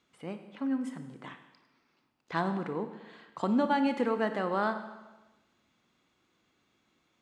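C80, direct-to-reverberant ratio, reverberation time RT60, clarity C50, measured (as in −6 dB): 11.0 dB, 8.0 dB, 1.1 s, 9.5 dB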